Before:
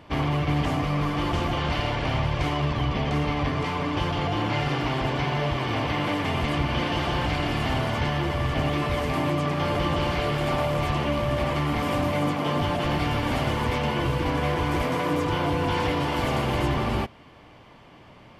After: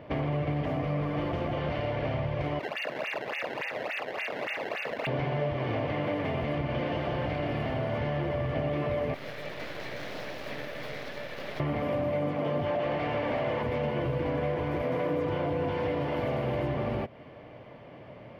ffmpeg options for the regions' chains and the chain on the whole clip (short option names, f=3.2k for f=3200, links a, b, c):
-filter_complex "[0:a]asettb=1/sr,asplit=3[a][b][c];[a]atrim=end=2.594[d];[b]atrim=start=2.59:end=5.07,asetpts=PTS-STARTPTS,afade=t=in:d=0.004:c=qsin,afade=t=out:st=2.476:d=0.004:c=qsin,lowpass=f=2.5k:t=q:w=0.5098,lowpass=f=2.5k:t=q:w=0.6013,lowpass=f=2.5k:t=q:w=0.9,lowpass=f=2.5k:t=q:w=2.563,afreqshift=-2900,acrusher=samples=21:mix=1:aa=0.000001:lfo=1:lforange=33.6:lforate=3.5,bandpass=f=2.2k:t=q:w=0.64[e];[c]atrim=start=5.066[f];[d][e]acrossfade=d=0.004:c1=hsin:c2=qsin[g];[g][f]acrossfade=d=0.004:c1=qsin:c2=hsin,asettb=1/sr,asplit=3[h][i][j];[h]atrim=end=9.144[k];[i]atrim=start=9.14:end=11.6,asetpts=PTS-STARTPTS,afade=t=in:d=0.004:c=qsin,afade=t=out:st=2.456:d=0.004:c=qsin,highpass=1.2k,aeval=exprs='abs(val(0))':c=same[l];[j]atrim=start=11.596[m];[k][l]acrossfade=d=0.004:c1=hsin:c2=qsin[n];[n][m]acrossfade=d=0.004:c1=qsin:c2=hsin,asettb=1/sr,asplit=3[o][p][q];[o]atrim=end=12.664[r];[p]atrim=start=12.66:end=13.63,asetpts=PTS-STARTPTS,afade=t=in:d=0.004:c=qsin,afade=t=out:st=0.966:d=0.004:c=qsin,equalizer=f=1.4k:t=o:w=0.23:g=-4,asplit=2[s][t];[t]highpass=f=720:p=1,volume=15dB,asoftclip=type=tanh:threshold=-14.5dB[u];[s][u]amix=inputs=2:normalize=0,lowpass=f=2.6k:p=1,volume=-6dB[v];[q]atrim=start=13.626[w];[r][v]acrossfade=d=0.004:c1=hsin:c2=qsin[x];[x][w]acrossfade=d=0.004:c1=qsin:c2=hsin,equalizer=f=620:w=3.2:g=7,acompressor=threshold=-28dB:ratio=6,equalizer=f=125:t=o:w=1:g=9,equalizer=f=250:t=o:w=1:g=5,equalizer=f=500:t=o:w=1:g=10,equalizer=f=2k:t=o:w=1:g=7,equalizer=f=8k:t=o:w=1:g=-12,volume=-7dB"